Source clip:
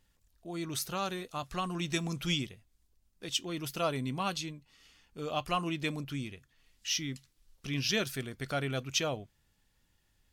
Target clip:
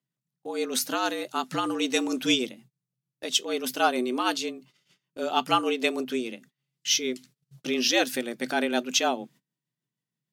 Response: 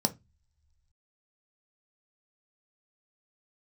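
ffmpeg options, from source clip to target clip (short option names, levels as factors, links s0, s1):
-af "tremolo=f=6.5:d=0.36,afreqshift=120,agate=range=0.0562:threshold=0.001:ratio=16:detection=peak,volume=2.82"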